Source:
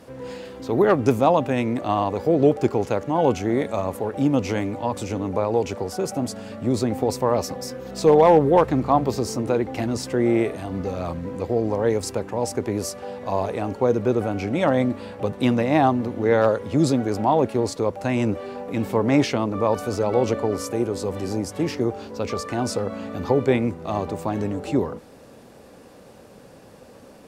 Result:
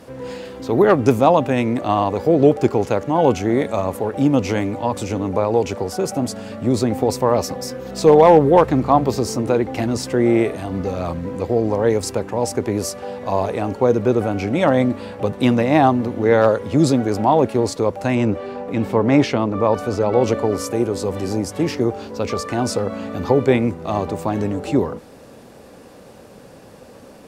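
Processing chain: 18.15–20.21 LPF 4000 Hz 6 dB/oct; gain +4 dB

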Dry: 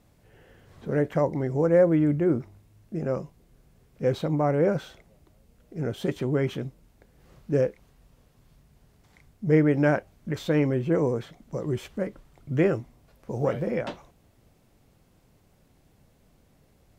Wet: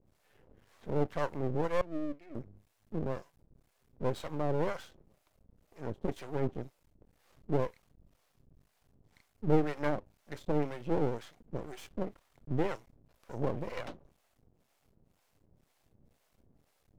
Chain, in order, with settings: harmonic tremolo 2 Hz, depth 100%, crossover 540 Hz; 1.81–2.35 vowel filter i; half-wave rectifier

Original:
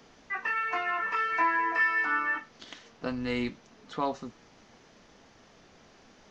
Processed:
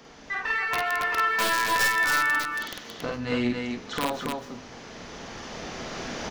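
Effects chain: one diode to ground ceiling -23.5 dBFS; recorder AGC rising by 8.3 dB/s; de-hum 50.94 Hz, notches 8; in parallel at -1 dB: compressor 12:1, threshold -42 dBFS, peak gain reduction 18.5 dB; on the sum: wrapped overs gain 19.5 dB; loudspeakers at several distances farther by 17 m -2 dB, 95 m -3 dB; reverb RT60 0.65 s, pre-delay 0.119 s, DRR 18 dB

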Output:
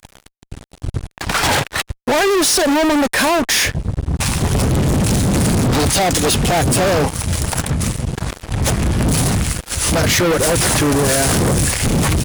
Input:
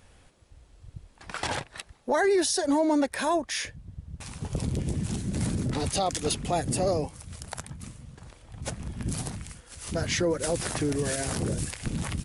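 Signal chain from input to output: in parallel at -3 dB: compressor, threshold -32 dBFS, peak gain reduction 11.5 dB; on the sum: fuzz box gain 37 dB, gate -45 dBFS

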